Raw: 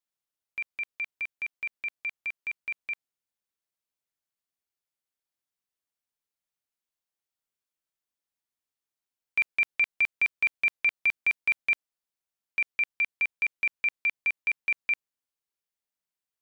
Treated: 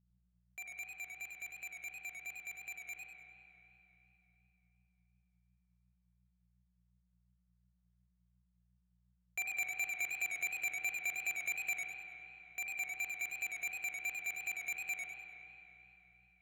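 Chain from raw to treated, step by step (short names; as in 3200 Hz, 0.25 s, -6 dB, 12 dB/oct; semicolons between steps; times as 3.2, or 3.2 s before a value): median filter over 15 samples; low shelf 210 Hz -6.5 dB; buzz 60 Hz, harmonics 3, -70 dBFS -1 dB/oct; spring tank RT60 3.4 s, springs 36 ms, chirp 55 ms, DRR 0 dB; warbling echo 99 ms, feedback 36%, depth 95 cents, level -5 dB; gain -6 dB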